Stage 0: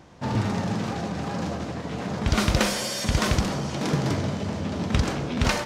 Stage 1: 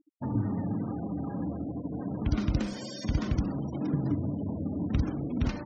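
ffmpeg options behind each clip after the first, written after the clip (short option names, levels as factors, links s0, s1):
-filter_complex "[0:a]equalizer=f=290:w=5.7:g=13,afftfilt=real='re*gte(hypot(re,im),0.0447)':imag='im*gte(hypot(re,im),0.0447)':win_size=1024:overlap=0.75,acrossover=split=280[s0][s1];[s1]acompressor=threshold=0.0178:ratio=5[s2];[s0][s2]amix=inputs=2:normalize=0,volume=0.596"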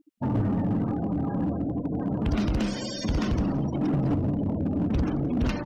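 -filter_complex "[0:a]asoftclip=type=hard:threshold=0.0422,equalizer=f=2800:t=o:w=0.23:g=4.5,asplit=4[s0][s1][s2][s3];[s1]adelay=173,afreqshift=-86,volume=0.112[s4];[s2]adelay=346,afreqshift=-172,volume=0.0403[s5];[s3]adelay=519,afreqshift=-258,volume=0.0146[s6];[s0][s4][s5][s6]amix=inputs=4:normalize=0,volume=2.11"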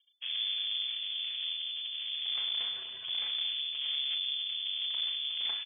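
-filter_complex "[0:a]aeval=exprs='max(val(0),0)':c=same,asplit=2[s0][s1];[s1]adelay=35,volume=0.376[s2];[s0][s2]amix=inputs=2:normalize=0,lowpass=f=3000:t=q:w=0.5098,lowpass=f=3000:t=q:w=0.6013,lowpass=f=3000:t=q:w=0.9,lowpass=f=3000:t=q:w=2.563,afreqshift=-3500,volume=0.422"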